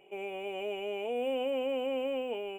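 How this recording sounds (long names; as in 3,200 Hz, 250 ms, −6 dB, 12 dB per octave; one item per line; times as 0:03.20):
background noise floor −47 dBFS
spectral slope −1.5 dB per octave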